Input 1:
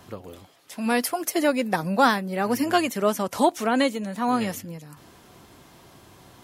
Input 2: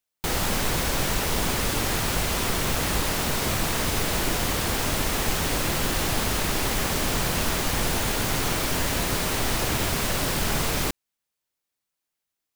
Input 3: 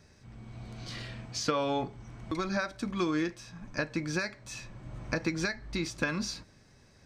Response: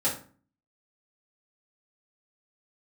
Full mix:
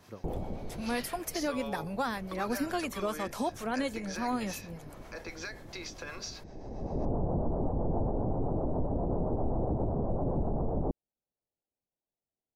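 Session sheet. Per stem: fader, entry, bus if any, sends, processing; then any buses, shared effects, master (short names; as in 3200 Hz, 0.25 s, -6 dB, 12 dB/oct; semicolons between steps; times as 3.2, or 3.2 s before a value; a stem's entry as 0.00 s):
-7.0 dB, 0.00 s, no send, notch 2900 Hz, Q 28; vocal rider 0.5 s
+2.0 dB, 0.00 s, no send, steep low-pass 790 Hz 36 dB/oct; auto duck -21 dB, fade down 1.10 s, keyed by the first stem
+1.5 dB, 0.00 s, no send, elliptic band-pass 420–6500 Hz; limiter -26 dBFS, peak gain reduction 10 dB; compressor 3:1, threshold -38 dBFS, peak gain reduction 6 dB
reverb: off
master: harmonic tremolo 7.6 Hz, depth 50%, crossover 490 Hz; limiter -22 dBFS, peak gain reduction 6.5 dB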